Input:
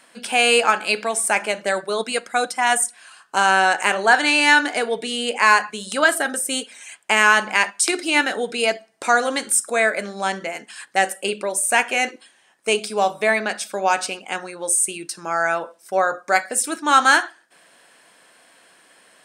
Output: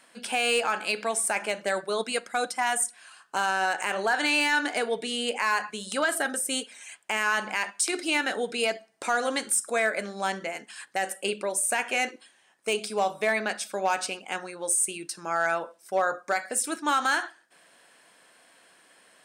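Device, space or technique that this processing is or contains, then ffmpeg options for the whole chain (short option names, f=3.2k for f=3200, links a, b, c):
limiter into clipper: -af "alimiter=limit=-9dB:level=0:latency=1:release=88,asoftclip=type=hard:threshold=-11dB,volume=-5dB"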